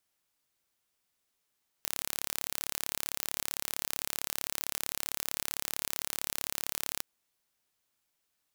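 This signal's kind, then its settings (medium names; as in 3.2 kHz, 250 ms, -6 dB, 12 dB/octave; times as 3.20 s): pulse train 35.5 per s, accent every 0, -6 dBFS 5.16 s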